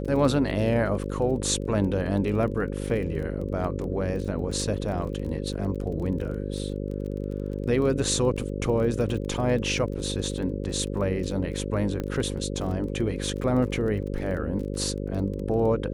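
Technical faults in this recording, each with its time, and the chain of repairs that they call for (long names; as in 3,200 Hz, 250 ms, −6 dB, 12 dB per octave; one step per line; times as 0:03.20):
mains buzz 50 Hz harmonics 11 −31 dBFS
surface crackle 22 per second −34 dBFS
0:12.00: click −18 dBFS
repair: click removal
hum removal 50 Hz, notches 11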